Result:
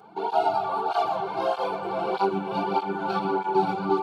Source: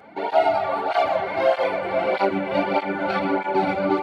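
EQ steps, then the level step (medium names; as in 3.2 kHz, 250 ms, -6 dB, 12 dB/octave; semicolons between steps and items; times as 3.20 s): static phaser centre 390 Hz, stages 8; 0.0 dB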